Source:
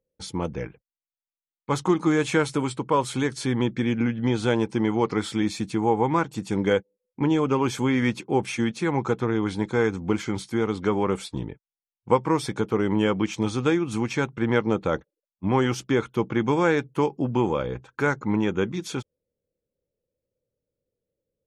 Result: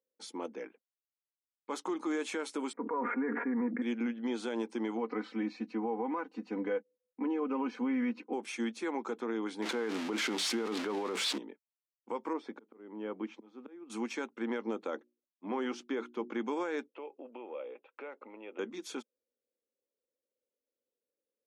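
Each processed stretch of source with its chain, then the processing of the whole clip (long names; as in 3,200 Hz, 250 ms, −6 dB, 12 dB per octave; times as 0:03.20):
0:02.73–0:03.82: Butterworth low-pass 2,100 Hz 72 dB per octave + comb filter 4.2 ms, depth 92% + level that may fall only so fast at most 49 dB per second
0:04.97–0:08.33: Butterworth band-reject 3,400 Hz, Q 7.1 + high-frequency loss of the air 280 metres + comb filter 4 ms, depth 73%
0:09.62–0:11.38: spike at every zero crossing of −17 dBFS + low-pass filter 3,000 Hz + envelope flattener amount 100%
0:12.33–0:13.90: head-to-tape spacing loss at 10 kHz 34 dB + volume swells 613 ms
0:14.95–0:16.30: high-frequency loss of the air 92 metres + mains-hum notches 60/120/180/240/300/360 Hz
0:16.88–0:18.59: downward compressor, threshold −29 dBFS + loudspeaker in its box 430–3,000 Hz, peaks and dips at 540 Hz +8 dB, 1,000 Hz −4 dB, 1,600 Hz −9 dB, 2,600 Hz +8 dB
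whole clip: elliptic high-pass filter 230 Hz, stop band 40 dB; brickwall limiter −17.5 dBFS; level −8.5 dB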